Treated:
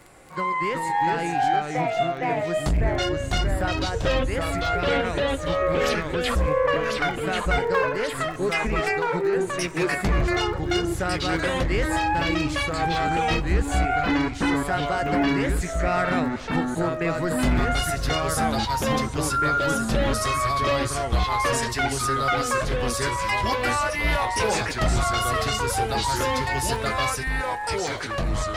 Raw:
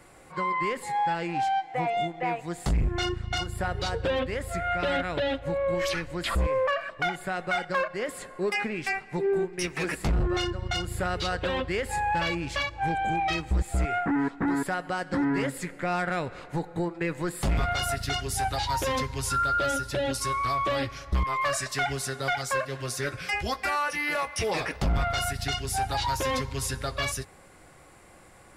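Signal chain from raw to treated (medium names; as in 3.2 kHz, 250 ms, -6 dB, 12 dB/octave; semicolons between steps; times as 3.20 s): crackle 13 per s -37 dBFS; ever faster or slower copies 327 ms, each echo -2 st, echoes 2; trim +2.5 dB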